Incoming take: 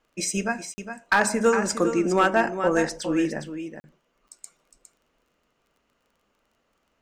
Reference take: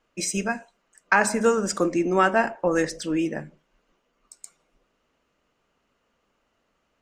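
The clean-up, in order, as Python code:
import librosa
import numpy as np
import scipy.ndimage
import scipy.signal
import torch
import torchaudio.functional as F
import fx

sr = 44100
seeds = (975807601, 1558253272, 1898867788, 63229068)

y = fx.fix_declip(x, sr, threshold_db=-10.5)
y = fx.fix_declick_ar(y, sr, threshold=6.5)
y = fx.fix_interpolate(y, sr, at_s=(0.74, 3.8), length_ms=40.0)
y = fx.fix_echo_inverse(y, sr, delay_ms=409, level_db=-9.5)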